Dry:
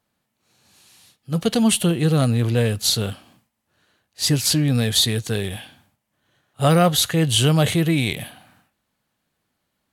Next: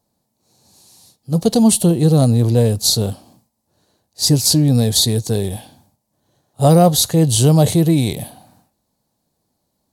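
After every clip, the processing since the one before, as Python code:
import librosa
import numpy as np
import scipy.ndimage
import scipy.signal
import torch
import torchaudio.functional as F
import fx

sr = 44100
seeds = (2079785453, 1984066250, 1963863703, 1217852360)

y = fx.band_shelf(x, sr, hz=2000.0, db=-14.0, octaves=1.7)
y = y * 10.0 ** (5.5 / 20.0)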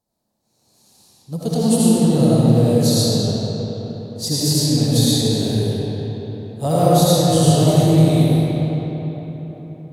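y = fx.rev_freeverb(x, sr, rt60_s=4.3, hf_ratio=0.6, predelay_ms=40, drr_db=-9.0)
y = y * 10.0 ** (-10.0 / 20.0)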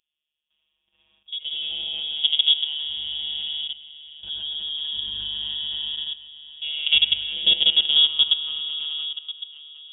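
y = fx.robotise(x, sr, hz=150.0)
y = fx.level_steps(y, sr, step_db=14)
y = fx.freq_invert(y, sr, carrier_hz=3500)
y = y * 10.0 ** (-1.0 / 20.0)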